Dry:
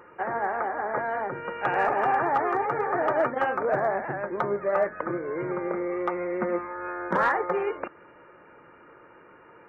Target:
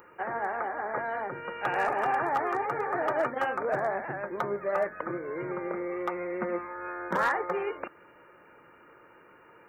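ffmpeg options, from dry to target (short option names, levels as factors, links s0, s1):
-af "aemphasis=mode=production:type=75kf,volume=0.596"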